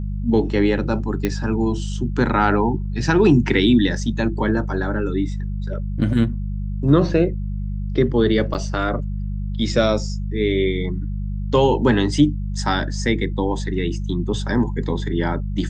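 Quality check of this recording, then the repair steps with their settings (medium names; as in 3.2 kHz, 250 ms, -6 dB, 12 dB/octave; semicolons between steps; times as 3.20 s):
hum 50 Hz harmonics 4 -25 dBFS
1.25 s: pop -8 dBFS
8.54–8.55 s: dropout 8.2 ms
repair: de-click; de-hum 50 Hz, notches 4; interpolate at 8.54 s, 8.2 ms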